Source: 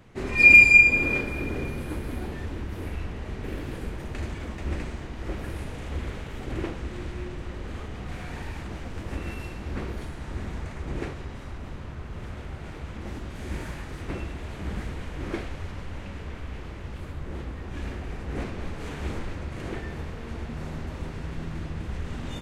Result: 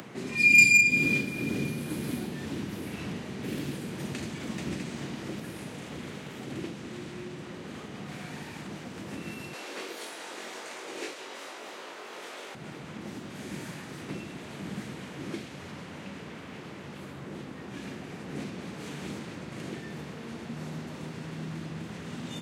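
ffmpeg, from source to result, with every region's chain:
-filter_complex "[0:a]asettb=1/sr,asplit=3[a][b][c];[a]atrim=end=0.584[d];[b]atrim=start=0.58:end=5.4,asetpts=PTS-STARTPTS,afade=t=in:d=0.004:c=qsin,afade=t=out:st=4.816:d=0.004:c=qsin,acontrast=61,tremolo=f=2:d=0.35[e];[c]atrim=start=5.396[f];[d][e]acrossfade=d=0.004:c1=hsin:c2=qsin[g];[g][f]acrossfade=d=0.004:c1=qsin:c2=hsin,asettb=1/sr,asplit=3[h][i][j];[h]atrim=end=9.534[k];[i]atrim=start=9.53:end=12.55,asetpts=PTS-STARTPTS,afade=t=in:d=0.004:c=qsin,afade=t=out:st=3.016:d=0.004:c=qsin,highpass=f=410:w=0.5412,highpass=f=410:w=1.3066,acontrast=52,asplit=2[l][m];[m]adelay=21,volume=-3.5dB[n];[l][n]amix=inputs=2:normalize=0,atrim=end_sample=133182[o];[j]atrim=start=12.546[p];[k][o]acrossfade=d=0.004:c1=hsin:c2=qsin[q];[q][p]acrossfade=d=0.004:c1=qsin:c2=hsin,acompressor=mode=upward:threshold=-36dB:ratio=2.5,highpass=f=150:w=0.5412,highpass=f=150:w=1.3066,acrossover=split=250|3000[r][s][t];[s]acompressor=threshold=-47dB:ratio=3[u];[r][u][t]amix=inputs=3:normalize=0,volume=2.5dB"

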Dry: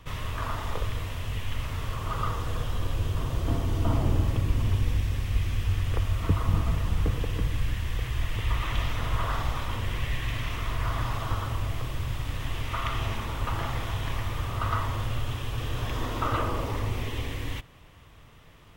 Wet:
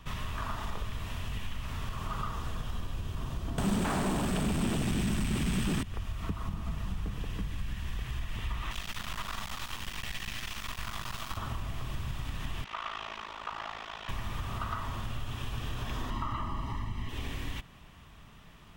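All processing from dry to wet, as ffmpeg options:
-filter_complex "[0:a]asettb=1/sr,asplit=3[a][b][c];[a]atrim=end=3.584[d];[b]atrim=start=3.58:end=5.83,asetpts=PTS-STARTPTS,afade=t=in:d=0.004:c=qsin,afade=t=out:st=2.246:d=0.004:c=qsin,equalizer=f=8.3k:w=7.2:g=14.5,aeval=exprs='0.266*sin(PI/2*7.08*val(0)/0.266)':c=same[e];[c]atrim=start=5.826[f];[d][e]acrossfade=d=0.004:c1=hsin:c2=qsin[g];[g][f]acrossfade=d=0.004:c1=qsin:c2=hsin,asettb=1/sr,asplit=3[h][i][j];[h]atrim=end=8.714[k];[i]atrim=start=8.71:end=11.37,asetpts=PTS-STARTPTS,afade=t=in:d=0.004:c=qsin,afade=t=out:st=2.656:d=0.004:c=qsin,tiltshelf=f=1.4k:g=-6.5,aeval=exprs='max(val(0),0)':c=same[l];[j]atrim=start=11.366[m];[k][l]acrossfade=d=0.004:c1=hsin:c2=qsin[n];[n][m]acrossfade=d=0.004:c1=qsin:c2=hsin,asettb=1/sr,asplit=3[o][p][q];[o]atrim=end=12.644[r];[p]atrim=start=12.64:end=14.09,asetpts=PTS-STARTPTS,afade=t=in:d=0.004:c=qsin,afade=t=out:st=1.446:d=0.004:c=qsin,acrossover=split=380 6300:gain=0.0708 1 0.0794[s][t][u];[s][t][u]amix=inputs=3:normalize=0,tremolo=f=54:d=0.889[v];[q]atrim=start=14.086[w];[r][v]acrossfade=d=0.004:c1=hsin:c2=qsin[x];[x][w]acrossfade=d=0.004:c1=qsin:c2=hsin,asettb=1/sr,asplit=3[y][z][aa];[y]atrim=end=16.104[ab];[z]atrim=start=16.1:end=17.09,asetpts=PTS-STARTPTS,afade=t=in:d=0.004:c=qsin,afade=t=out:st=0.986:d=0.004:c=qsin,aemphasis=mode=reproduction:type=cd,bandreject=f=750:w=6.2,aecho=1:1:1:0.8,atrim=end_sample=43659[ac];[aa]atrim=start=17.086[ad];[ab][ac]acrossfade=d=0.004:c1=hsin:c2=qsin[ae];[ae][ad]acrossfade=d=0.004:c1=qsin:c2=hsin,bandreject=f=2.1k:w=19,acompressor=threshold=-30dB:ratio=6,equalizer=f=100:t=o:w=0.33:g=-7,equalizer=f=200:t=o:w=0.33:g=7,equalizer=f=315:t=o:w=0.33:g=-3,equalizer=f=500:t=o:w=0.33:g=-9,equalizer=f=12.5k:t=o:w=0.33:g=-4"

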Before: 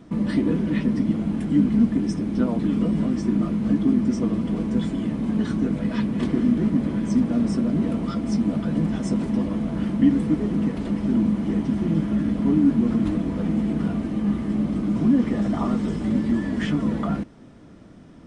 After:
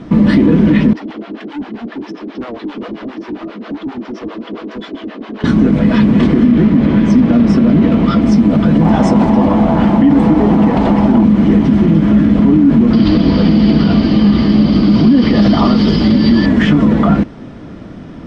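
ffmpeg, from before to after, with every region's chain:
-filter_complex "[0:a]asettb=1/sr,asplit=3[a][b][c];[a]atrim=end=0.934[d];[b]atrim=start=0.93:end=5.44,asetpts=PTS-STARTPTS,afade=t=in:d=0.004:c=qsin,afade=t=out:st=4.506:d=0.004:c=qsin,highpass=f=350:w=0.5412,highpass=f=350:w=1.3066,equalizer=f=520:t=q:w=4:g=-5,equalizer=f=880:t=q:w=4:g=-7,equalizer=f=2.2k:t=q:w=4:g=-4,lowpass=f=5k:w=0.5412,lowpass=f=5k:w=1.3066,asoftclip=type=hard:threshold=-32.5dB,acrossover=split=530[e][f];[e]aeval=exprs='val(0)*(1-1/2+1/2*cos(2*PI*7.5*n/s))':c=same[g];[f]aeval=exprs='val(0)*(1-1/2-1/2*cos(2*PI*7.5*n/s))':c=same[h];[g][h]amix=inputs=2:normalize=0[i];[c]atrim=start=5.436[j];[d][i]acrossfade=d=0.004:c1=hsin:c2=qsin[k];[k][j]acrossfade=d=0.004:c1=qsin:c2=hsin,asettb=1/sr,asplit=3[l][m][n];[l]atrim=end=6.454[o];[m]atrim=start=6.45:end=8.22,asetpts=PTS-STARTPTS,afade=t=in:d=0.004:c=qsin,afade=t=out:st=1.766:d=0.004:c=qsin,lowpass=3.2k,aemphasis=mode=production:type=75fm[p];[n]atrim=start=8.216[q];[o][p]acrossfade=d=0.004:c1=hsin:c2=qsin[r];[r][q]acrossfade=d=0.004:c1=qsin:c2=hsin,asettb=1/sr,asplit=3[s][t][u];[s]atrim=end=8.814[v];[t]atrim=start=8.81:end=11.24,asetpts=PTS-STARTPTS,afade=t=in:d=0.004:c=qsin,afade=t=out:st=2.426:d=0.004:c=qsin,equalizer=f=820:t=o:w=0.8:g=13,bandreject=f=50:t=h:w=6,bandreject=f=100:t=h:w=6,bandreject=f=150:t=h:w=6,bandreject=f=200:t=h:w=6,bandreject=f=250:t=h:w=6,bandreject=f=300:t=h:w=6,bandreject=f=350:t=h:w=6,bandreject=f=400:t=h:w=6,bandreject=f=450:t=h:w=6[w];[u]atrim=start=11.236[x];[v][w]acrossfade=d=0.004:c1=hsin:c2=qsin[y];[y][x]acrossfade=d=0.004:c1=qsin:c2=hsin,asettb=1/sr,asplit=3[z][aa][ab];[z]atrim=end=12.934[ac];[aa]atrim=start=12.93:end=16.46,asetpts=PTS-STARTPTS,afade=t=in:d=0.004:c=qsin,afade=t=out:st=3.526:d=0.004:c=qsin,lowpass=f=4.7k:t=q:w=15,equalizer=f=3.1k:t=o:w=0.21:g=7[ad];[ab]atrim=start=16.456[ae];[ac][ad]acrossfade=d=0.004:c1=hsin:c2=qsin[af];[af][ae]acrossfade=d=0.004:c1=qsin:c2=hsin,lowpass=4.5k,alimiter=level_in=17dB:limit=-1dB:release=50:level=0:latency=1,volume=-1dB"

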